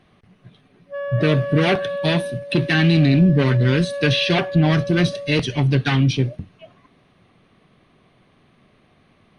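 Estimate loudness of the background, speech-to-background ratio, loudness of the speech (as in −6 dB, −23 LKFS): −29.5 LKFS, 11.0 dB, −18.5 LKFS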